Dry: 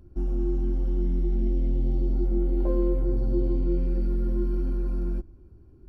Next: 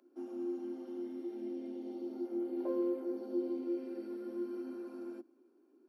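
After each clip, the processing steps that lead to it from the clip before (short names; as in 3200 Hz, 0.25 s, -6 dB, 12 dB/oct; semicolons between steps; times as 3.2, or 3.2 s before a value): steep high-pass 240 Hz 96 dB/oct; gain -6 dB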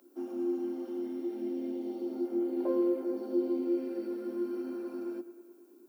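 added noise violet -77 dBFS; analogue delay 0.106 s, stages 2048, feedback 71%, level -16 dB; gain +5.5 dB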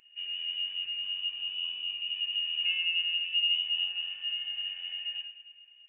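reverb RT60 0.70 s, pre-delay 10 ms, DRR 3 dB; inverted band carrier 3200 Hz; gain -1 dB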